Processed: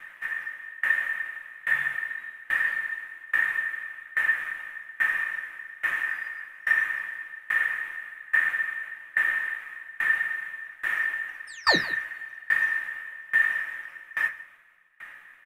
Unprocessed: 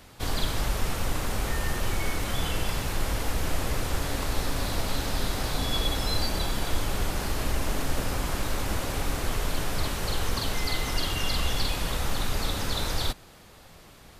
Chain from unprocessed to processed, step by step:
sub-octave generator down 1 octave, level +2 dB
drawn EQ curve 670 Hz 0 dB, 2,100 Hz −12 dB, 3,200 Hz −25 dB, 14,000 Hz 0 dB
wrong playback speed 48 kHz file played as 44.1 kHz
in parallel at +2 dB: downward compressor, threshold −32 dBFS, peak gain reduction 13.5 dB
on the sum: sound drawn into the spectrogram fall, 0:11.47–0:11.77, 1,900–7,400 Hz −18 dBFS
reversed playback
upward compression, threshold −36 dBFS
reversed playback
bass and treble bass +1 dB, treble −8 dB
ring modulation 1,800 Hz
single-tap delay 162 ms −15 dB
convolution reverb RT60 0.25 s, pre-delay 3 ms, DRR 3.5 dB
tremolo with a ramp in dB decaying 1.2 Hz, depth 26 dB

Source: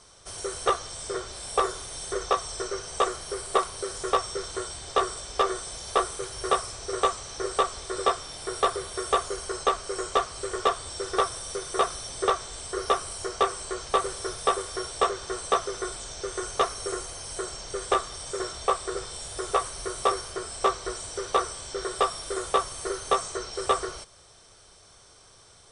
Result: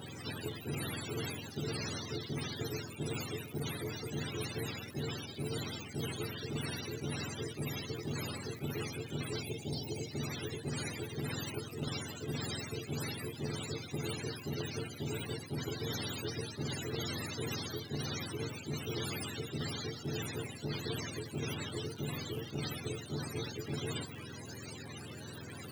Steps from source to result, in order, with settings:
frequency axis turned over on the octave scale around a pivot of 410 Hz
time-frequency box erased 0:09.42–0:10.11, 960–2,100 Hz
reversed playback
downward compressor, threshold −38 dBFS, peak gain reduction 20.5 dB
reversed playback
parametric band 1,400 Hz −4 dB 1.4 octaves
surface crackle 280 per second −67 dBFS
every bin compressed towards the loudest bin 2 to 1
level +3.5 dB

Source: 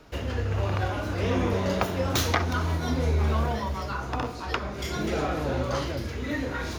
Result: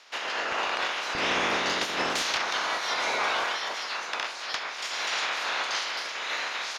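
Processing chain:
ceiling on every frequency bin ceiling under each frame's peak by 26 dB
high-pass filter 620 Hz 12 dB per octave, from 0:01.15 230 Hz, from 0:02.22 750 Hz
hard clipping −20 dBFS, distortion −17 dB
low-pass filter 5,800 Hz 12 dB per octave
single-tap delay 940 ms −16 dB

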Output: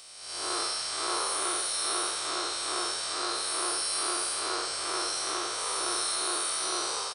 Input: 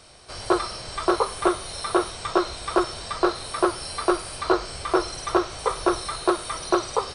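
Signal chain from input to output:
spectrum smeared in time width 199 ms
spectral tilt +4 dB per octave
echo with shifted repeats 87 ms, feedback 56%, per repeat +96 Hz, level −10 dB
level −4 dB

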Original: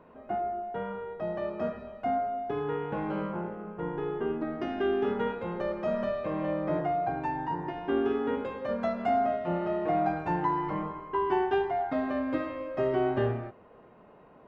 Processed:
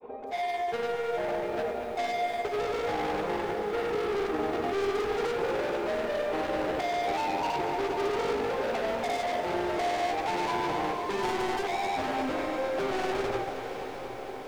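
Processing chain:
parametric band 170 Hz −7 dB 0.4 octaves
hollow resonant body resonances 460/780/2,300/3,500 Hz, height 17 dB, ringing for 25 ms
hard clipping −28.5 dBFS, distortion −3 dB
granular cloud 100 ms, grains 20 per second, pitch spread up and down by 0 semitones
feedback delay with all-pass diffusion 714 ms, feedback 68%, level −12 dB
feedback echo at a low word length 235 ms, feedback 80%, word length 9 bits, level −11 dB

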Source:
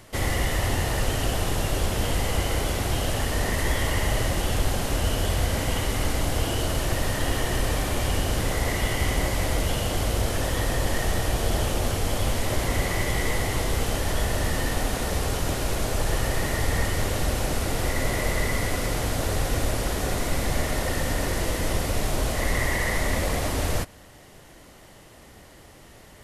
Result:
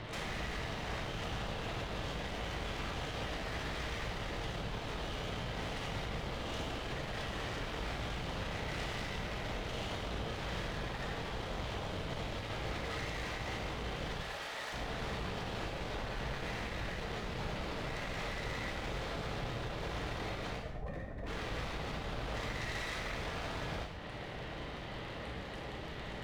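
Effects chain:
surface crackle 21 per second −31 dBFS
Butterworth low-pass 4,100 Hz
downward compressor 8 to 1, threshold −36 dBFS, peak gain reduction 17.5 dB
wave folding −38 dBFS
0:14.20–0:14.73: high-pass filter 580 Hz 12 dB per octave
0:20.58–0:21.27: gate on every frequency bin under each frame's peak −10 dB strong
asymmetric clip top −52 dBFS, bottom −40.5 dBFS
reverb whose tail is shaped and stops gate 280 ms falling, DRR −0.5 dB
level +5 dB

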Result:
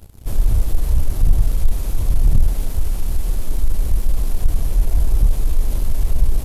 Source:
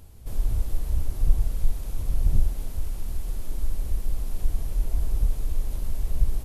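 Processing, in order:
leveller curve on the samples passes 2
level +2.5 dB

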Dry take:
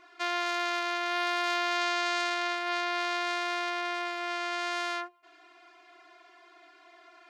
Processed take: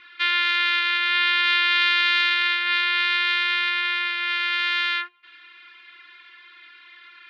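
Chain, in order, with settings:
drawn EQ curve 160 Hz 0 dB, 380 Hz −8 dB, 660 Hz −21 dB, 990 Hz −1 dB, 1,700 Hz +12 dB, 3,700 Hz +15 dB, 6,200 Hz −9 dB, 10,000 Hz −19 dB

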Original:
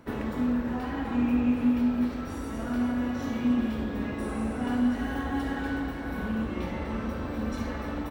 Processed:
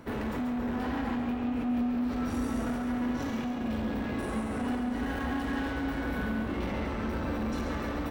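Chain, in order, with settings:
downward compressor, threshold −27 dBFS, peak gain reduction 7.5 dB
soft clipping −33 dBFS, distortion −11 dB
echo with a time of its own for lows and highs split 630 Hz, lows 518 ms, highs 137 ms, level −7 dB
level +4 dB

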